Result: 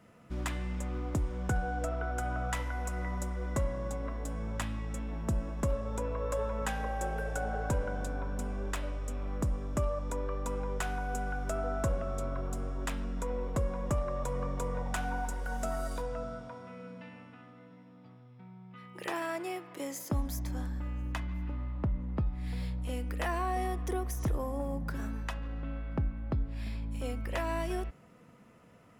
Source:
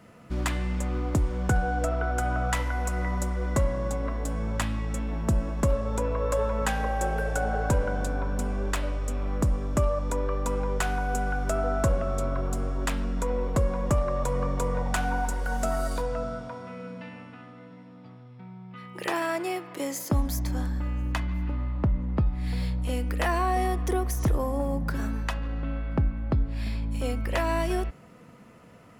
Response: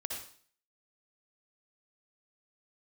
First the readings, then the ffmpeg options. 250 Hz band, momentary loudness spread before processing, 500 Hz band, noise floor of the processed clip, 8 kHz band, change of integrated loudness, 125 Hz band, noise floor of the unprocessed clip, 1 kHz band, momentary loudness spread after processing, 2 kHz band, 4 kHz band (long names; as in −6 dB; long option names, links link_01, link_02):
−7.0 dB, 7 LU, −7.0 dB, −55 dBFS, −7.0 dB, −7.0 dB, −7.0 dB, −48 dBFS, −7.0 dB, 7 LU, −7.0 dB, −7.5 dB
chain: -af "bandreject=frequency=4400:width=18,volume=-7dB"